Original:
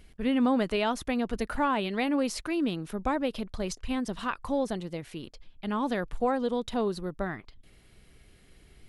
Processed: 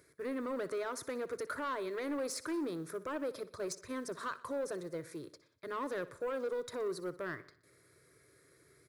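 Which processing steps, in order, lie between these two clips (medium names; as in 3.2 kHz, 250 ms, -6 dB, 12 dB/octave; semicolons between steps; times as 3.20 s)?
high-pass 120 Hz 24 dB/octave; peak limiter -22 dBFS, peak gain reduction 6.5 dB; static phaser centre 790 Hz, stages 6; short-mantissa float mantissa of 4-bit; saturation -31.5 dBFS, distortion -15 dB; on a send: feedback delay 61 ms, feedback 53%, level -17 dB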